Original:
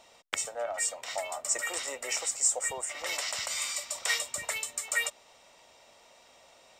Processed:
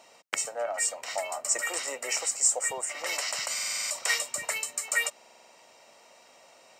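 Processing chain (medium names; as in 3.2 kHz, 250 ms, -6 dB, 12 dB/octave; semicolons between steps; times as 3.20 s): high-pass 150 Hz 12 dB/octave; band-stop 3.5 kHz, Q 5.6; buffer glitch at 3.53/5.15 s, samples 2048, times 7; trim +2.5 dB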